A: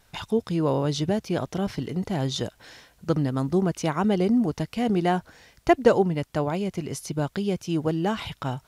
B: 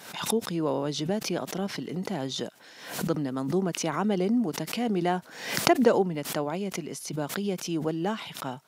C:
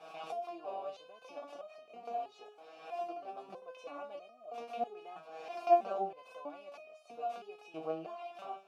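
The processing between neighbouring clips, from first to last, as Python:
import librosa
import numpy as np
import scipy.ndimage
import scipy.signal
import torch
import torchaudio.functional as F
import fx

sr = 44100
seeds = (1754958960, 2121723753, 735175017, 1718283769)

y1 = scipy.signal.sosfilt(scipy.signal.butter(4, 170.0, 'highpass', fs=sr, output='sos'), x)
y1 = fx.pre_swell(y1, sr, db_per_s=77.0)
y1 = F.gain(torch.from_numpy(y1), -3.5).numpy()
y2 = fx.bin_compress(y1, sr, power=0.6)
y2 = fx.vowel_filter(y2, sr, vowel='a')
y2 = fx.resonator_held(y2, sr, hz=3.1, low_hz=160.0, high_hz=620.0)
y2 = F.gain(torch.from_numpy(y2), 6.5).numpy()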